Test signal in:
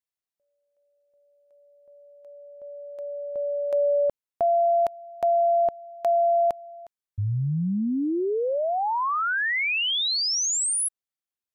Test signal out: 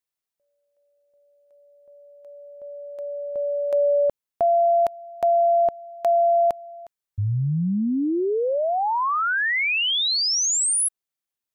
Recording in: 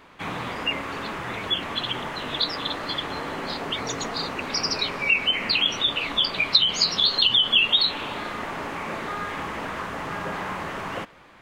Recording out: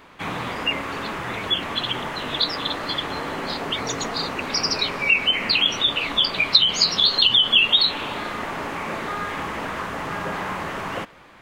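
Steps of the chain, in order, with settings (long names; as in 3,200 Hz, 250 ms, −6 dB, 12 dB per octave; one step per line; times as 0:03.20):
high-shelf EQ 11,000 Hz +3 dB
level +2.5 dB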